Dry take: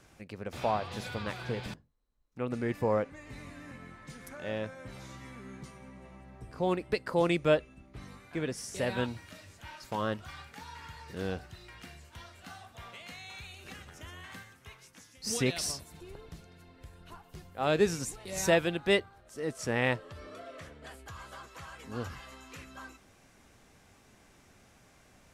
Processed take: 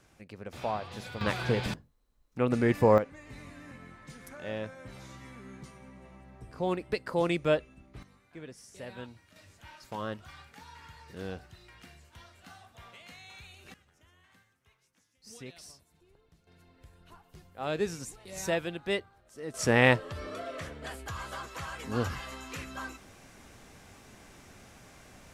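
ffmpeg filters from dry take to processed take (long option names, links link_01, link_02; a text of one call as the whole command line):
ffmpeg -i in.wav -af "asetnsamples=nb_out_samples=441:pad=0,asendcmd='1.21 volume volume 7dB;2.98 volume volume -1dB;8.03 volume volume -11.5dB;9.36 volume volume -4dB;13.74 volume volume -16.5dB;16.47 volume volume -5dB;19.54 volume volume 7dB',volume=-3dB" out.wav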